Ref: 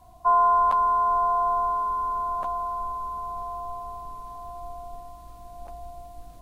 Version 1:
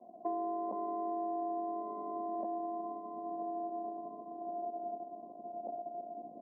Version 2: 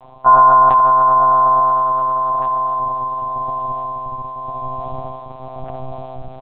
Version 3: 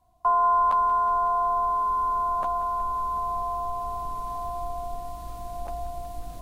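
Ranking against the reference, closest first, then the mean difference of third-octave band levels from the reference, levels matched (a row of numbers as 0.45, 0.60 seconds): 3, 2, 1; 4.0, 6.0, 8.5 decibels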